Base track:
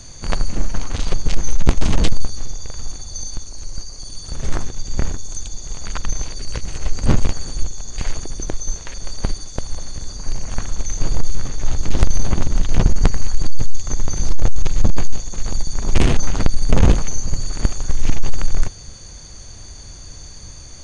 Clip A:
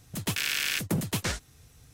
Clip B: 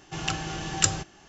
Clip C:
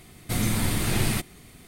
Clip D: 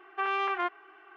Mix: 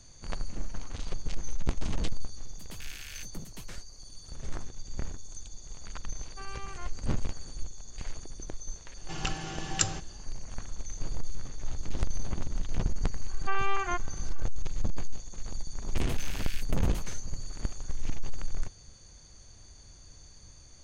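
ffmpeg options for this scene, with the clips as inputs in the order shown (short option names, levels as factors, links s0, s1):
-filter_complex "[1:a]asplit=2[s0][s1];[4:a]asplit=2[s2][s3];[0:a]volume=0.178[s4];[s0]atrim=end=1.93,asetpts=PTS-STARTPTS,volume=0.141,afade=t=in:d=0.004:c=hsin,afade=t=out:st=1.926:d=0.004:c=hsin,adelay=2440[s5];[s2]atrim=end=1.16,asetpts=PTS-STARTPTS,volume=0.168,afade=t=in:d=0.004:c=hsin,afade=t=out:st=1.156:d=0.004:c=hsin,adelay=6190[s6];[2:a]atrim=end=1.28,asetpts=PTS-STARTPTS,volume=0.562,afade=t=in:d=0.004:c=hsin,afade=t=out:st=1.276:d=0.004:c=hsin,adelay=8970[s7];[s3]atrim=end=1.16,asetpts=PTS-STARTPTS,volume=0.794,afade=t=in:d=0.004:c=hsin,afade=t=out:st=1.156:d=0.004:c=hsin,adelay=13290[s8];[s1]atrim=end=1.93,asetpts=PTS-STARTPTS,volume=0.178,afade=t=in:d=0.004:c=hsin,afade=t=out:st=1.926:d=0.004:c=hsin,adelay=15820[s9];[s4][s5][s6][s7][s8][s9]amix=inputs=6:normalize=0"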